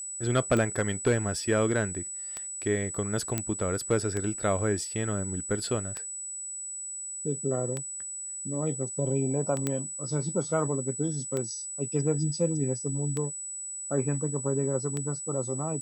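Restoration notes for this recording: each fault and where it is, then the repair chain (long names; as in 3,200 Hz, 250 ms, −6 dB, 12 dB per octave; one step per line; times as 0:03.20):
scratch tick 33 1/3 rpm −18 dBFS
whistle 7,900 Hz −35 dBFS
0:03.38: click −12 dBFS
0:09.67: click −14 dBFS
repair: click removal
notch filter 7,900 Hz, Q 30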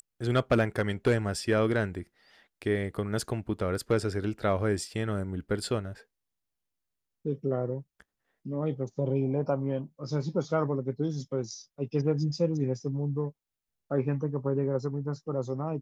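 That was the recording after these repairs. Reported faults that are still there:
none of them is left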